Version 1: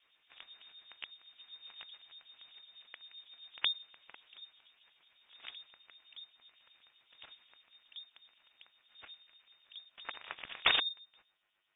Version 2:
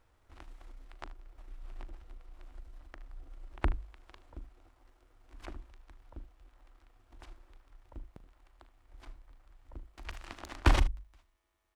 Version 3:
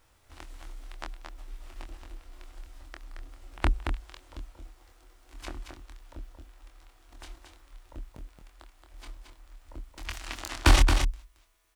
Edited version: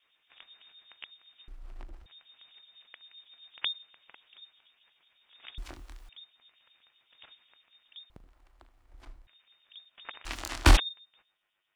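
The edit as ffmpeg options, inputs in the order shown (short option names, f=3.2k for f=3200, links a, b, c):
-filter_complex "[1:a]asplit=2[a][b];[2:a]asplit=2[c][d];[0:a]asplit=5[e][f][g][h][i];[e]atrim=end=1.482[j];[a]atrim=start=1.478:end=2.062[k];[f]atrim=start=2.058:end=5.582[l];[c]atrim=start=5.578:end=6.092[m];[g]atrim=start=6.088:end=8.102[n];[b]atrim=start=8.098:end=9.272[o];[h]atrim=start=9.268:end=10.252[p];[d]atrim=start=10.248:end=10.772[q];[i]atrim=start=10.768[r];[j][k]acrossfade=d=0.004:c1=hsin:c2=hsin[s];[s][l]acrossfade=d=0.004:c1=hsin:c2=hsin[t];[t][m]acrossfade=d=0.004:c1=hsin:c2=hsin[u];[u][n]acrossfade=d=0.004:c1=hsin:c2=hsin[v];[v][o]acrossfade=d=0.004:c1=hsin:c2=hsin[w];[w][p]acrossfade=d=0.004:c1=hsin:c2=hsin[x];[x][q]acrossfade=d=0.004:c1=hsin:c2=hsin[y];[y][r]acrossfade=d=0.004:c1=hsin:c2=hsin"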